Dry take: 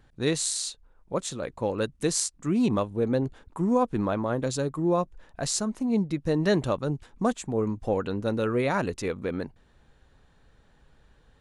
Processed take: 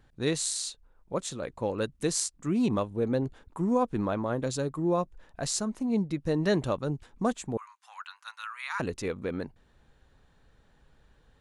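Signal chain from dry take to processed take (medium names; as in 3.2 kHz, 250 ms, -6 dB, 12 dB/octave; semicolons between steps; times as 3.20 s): 7.57–8.80 s: steep high-pass 1 kHz 48 dB/octave; trim -2.5 dB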